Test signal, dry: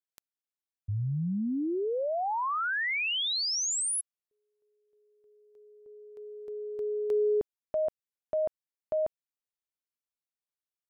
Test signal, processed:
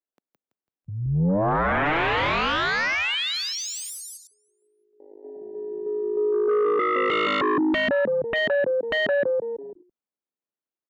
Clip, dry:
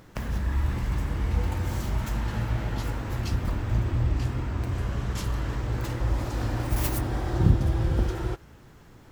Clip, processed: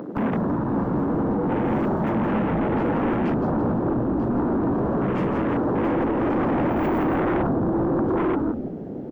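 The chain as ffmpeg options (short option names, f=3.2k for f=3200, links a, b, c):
-filter_complex "[0:a]tiltshelf=f=880:g=7,acompressor=threshold=-20dB:ratio=5:attack=2.2:release=305:knee=6:detection=rms,highpass=f=220:w=0.5412,highpass=f=220:w=1.3066,asplit=6[a][b][c][d][e][f];[b]adelay=166,afreqshift=-53,volume=-5.5dB[g];[c]adelay=332,afreqshift=-106,volume=-13.5dB[h];[d]adelay=498,afreqshift=-159,volume=-21.4dB[i];[e]adelay=664,afreqshift=-212,volume=-29.4dB[j];[f]adelay=830,afreqshift=-265,volume=-37.3dB[k];[a][g][h][i][j][k]amix=inputs=6:normalize=0,aeval=exprs='0.168*sin(PI/2*7.08*val(0)/0.168)':c=same,afwtdn=0.0398,acontrast=63,equalizer=f=11k:w=0.37:g=-15,volume=-8.5dB"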